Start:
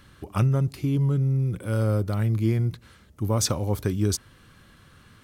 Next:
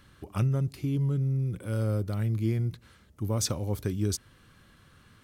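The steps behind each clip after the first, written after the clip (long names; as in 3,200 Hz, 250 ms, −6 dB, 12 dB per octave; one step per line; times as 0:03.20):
dynamic equaliser 990 Hz, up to −4 dB, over −42 dBFS, Q 1
level −4.5 dB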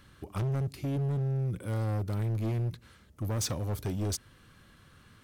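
hard clipping −28 dBFS, distortion −11 dB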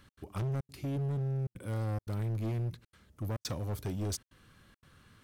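gate pattern "x.xxxxx.xxxxxxxx" 174 BPM −60 dB
level −3 dB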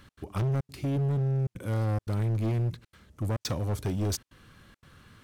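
linearly interpolated sample-rate reduction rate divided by 2×
level +6 dB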